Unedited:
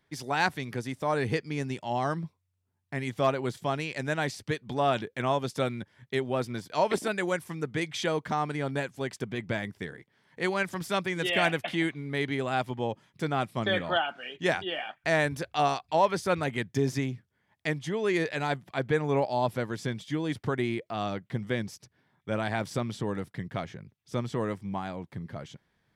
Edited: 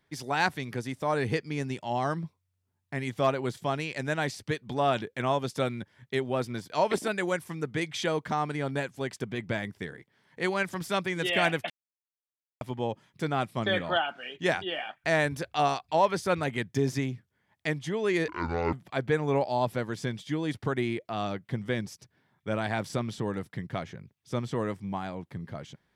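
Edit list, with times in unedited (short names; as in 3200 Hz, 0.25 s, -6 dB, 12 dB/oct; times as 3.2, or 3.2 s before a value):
11.7–12.61 mute
18.28–18.54 speed 58%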